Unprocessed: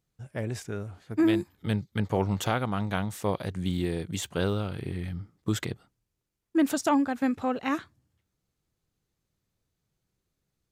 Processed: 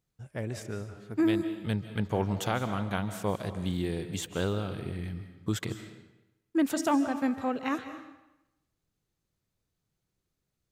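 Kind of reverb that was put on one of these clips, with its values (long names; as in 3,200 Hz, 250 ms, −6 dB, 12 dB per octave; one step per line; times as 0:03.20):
comb and all-pass reverb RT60 0.93 s, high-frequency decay 0.9×, pre-delay 115 ms, DRR 10 dB
level −2.5 dB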